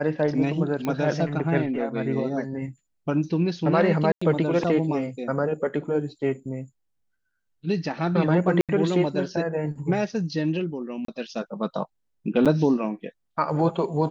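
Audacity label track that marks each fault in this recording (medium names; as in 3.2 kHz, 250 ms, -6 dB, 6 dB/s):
0.850000	0.850000	pop -15 dBFS
4.120000	4.210000	dropout 95 ms
8.610000	8.690000	dropout 77 ms
11.050000	11.080000	dropout 33 ms
12.450000	12.460000	dropout 7 ms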